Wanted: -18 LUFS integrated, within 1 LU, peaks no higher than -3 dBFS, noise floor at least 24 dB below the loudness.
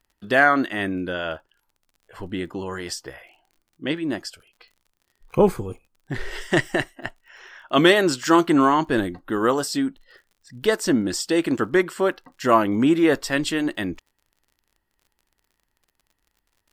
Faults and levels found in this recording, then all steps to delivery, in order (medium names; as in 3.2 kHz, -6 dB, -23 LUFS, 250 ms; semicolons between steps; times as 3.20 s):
tick rate 45 per s; loudness -22.0 LUFS; peak level -3.5 dBFS; loudness target -18.0 LUFS
-> de-click; trim +4 dB; peak limiter -3 dBFS